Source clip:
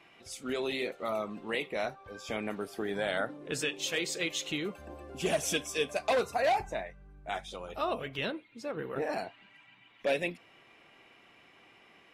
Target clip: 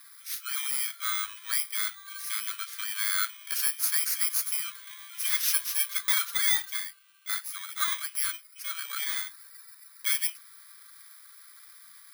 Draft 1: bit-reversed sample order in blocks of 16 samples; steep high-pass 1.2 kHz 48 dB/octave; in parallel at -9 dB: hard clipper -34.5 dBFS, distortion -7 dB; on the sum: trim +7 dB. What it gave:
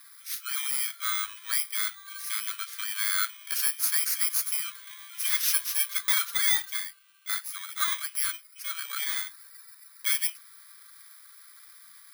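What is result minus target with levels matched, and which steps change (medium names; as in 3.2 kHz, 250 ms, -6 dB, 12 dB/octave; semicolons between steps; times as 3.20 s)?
hard clipper: distortion -4 dB
change: hard clipper -42 dBFS, distortion -3 dB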